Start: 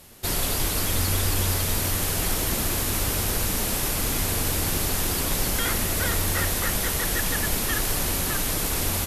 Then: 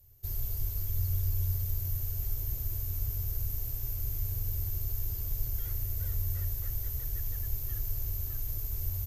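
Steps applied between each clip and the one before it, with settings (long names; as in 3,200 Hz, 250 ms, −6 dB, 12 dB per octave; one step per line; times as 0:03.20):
drawn EQ curve 120 Hz 0 dB, 180 Hz −29 dB, 370 Hz −19 dB, 1,100 Hz −26 dB, 3,600 Hz −25 dB, 6,600 Hz −15 dB, 10,000 Hz −27 dB, 14,000 Hz +4 dB
level −4 dB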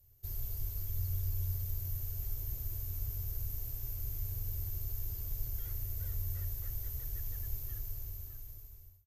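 fade-out on the ending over 1.52 s
level −5 dB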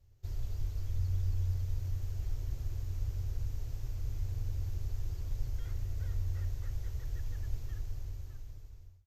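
high-frequency loss of the air 110 metres
level +3.5 dB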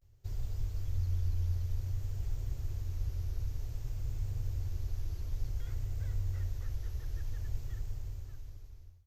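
pitch vibrato 0.54 Hz 83 cents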